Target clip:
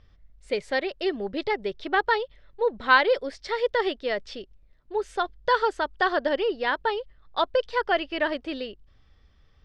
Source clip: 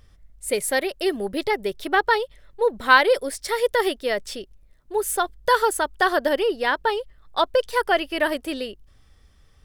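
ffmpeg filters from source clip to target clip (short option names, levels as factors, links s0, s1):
-af "lowpass=f=4900:w=0.5412,lowpass=f=4900:w=1.3066,volume=0.668"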